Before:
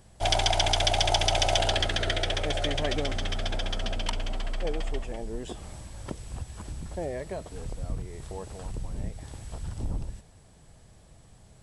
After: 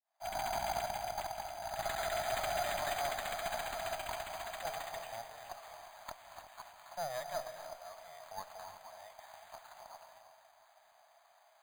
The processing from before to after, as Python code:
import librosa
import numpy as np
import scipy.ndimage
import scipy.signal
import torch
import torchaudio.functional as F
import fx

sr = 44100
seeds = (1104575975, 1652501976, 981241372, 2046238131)

y = fx.fade_in_head(x, sr, length_s=1.08)
y = fx.dynamic_eq(y, sr, hz=930.0, q=0.94, threshold_db=-38.0, ratio=4.0, max_db=3)
y = scipy.signal.sosfilt(scipy.signal.cheby1(5, 1.0, [660.0, 8500.0], 'bandpass', fs=sr, output='sos'), y)
y = fx.high_shelf(y, sr, hz=2500.0, db=-8.0)
y = fx.over_compress(y, sr, threshold_db=-34.0, ratio=-0.5)
y = fx.tube_stage(y, sr, drive_db=31.0, bias=0.6)
y = fx.echo_alternate(y, sr, ms=353, hz=1000.0, feedback_pct=62, wet_db=-12.5)
y = fx.rev_gated(y, sr, seeds[0], gate_ms=340, shape='rising', drr_db=8.0)
y = np.repeat(scipy.signal.resample_poly(y, 1, 8), 8)[:len(y)]
y = y * 10.0 ** (1.5 / 20.0)